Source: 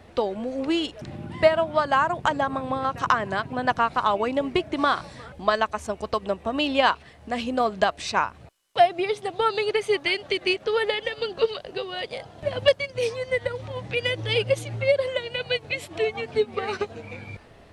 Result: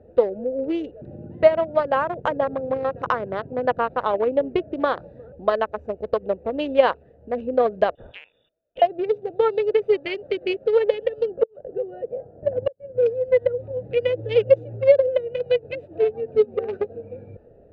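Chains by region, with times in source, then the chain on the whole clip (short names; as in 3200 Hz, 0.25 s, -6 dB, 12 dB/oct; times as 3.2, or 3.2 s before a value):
7.95–8.82 low shelf 220 Hz +5.5 dB + compressor 4:1, threshold -27 dBFS + inverted band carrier 3600 Hz
11.3–13.06 LPF 1700 Hz + flipped gate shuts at -13 dBFS, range -29 dB
whole clip: Wiener smoothing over 41 samples; LPF 3200 Hz 12 dB/oct; bell 500 Hz +13.5 dB 0.69 oct; gain -3 dB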